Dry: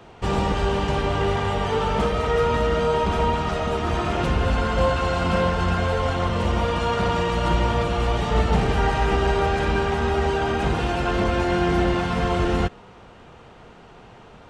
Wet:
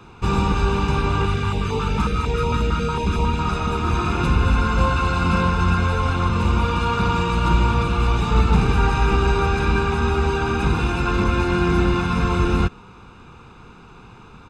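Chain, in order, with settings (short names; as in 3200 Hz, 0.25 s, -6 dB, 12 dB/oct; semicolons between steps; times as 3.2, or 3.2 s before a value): comb 0.8 ms, depth 75%; 1.25–3.39 stepped notch 11 Hz 500–1500 Hz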